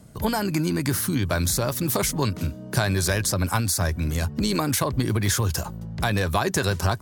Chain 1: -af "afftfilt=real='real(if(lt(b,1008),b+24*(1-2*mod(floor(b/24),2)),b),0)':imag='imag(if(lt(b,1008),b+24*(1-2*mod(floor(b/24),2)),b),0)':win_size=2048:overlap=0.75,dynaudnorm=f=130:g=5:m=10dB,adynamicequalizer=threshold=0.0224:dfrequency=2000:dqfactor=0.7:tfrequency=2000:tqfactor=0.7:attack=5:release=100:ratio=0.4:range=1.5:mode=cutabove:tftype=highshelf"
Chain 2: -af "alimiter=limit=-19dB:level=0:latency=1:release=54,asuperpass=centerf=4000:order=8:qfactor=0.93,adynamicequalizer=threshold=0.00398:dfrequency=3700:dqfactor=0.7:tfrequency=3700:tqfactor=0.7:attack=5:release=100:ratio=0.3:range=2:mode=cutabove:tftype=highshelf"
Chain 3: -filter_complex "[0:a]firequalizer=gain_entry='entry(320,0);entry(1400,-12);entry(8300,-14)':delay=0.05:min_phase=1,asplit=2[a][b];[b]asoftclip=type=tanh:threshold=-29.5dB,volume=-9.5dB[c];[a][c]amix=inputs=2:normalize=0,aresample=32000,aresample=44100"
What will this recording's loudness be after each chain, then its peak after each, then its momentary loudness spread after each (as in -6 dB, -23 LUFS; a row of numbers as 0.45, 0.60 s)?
-17.0, -39.5, -25.5 LUFS; -1.5, -22.5, -12.0 dBFS; 4, 8, 3 LU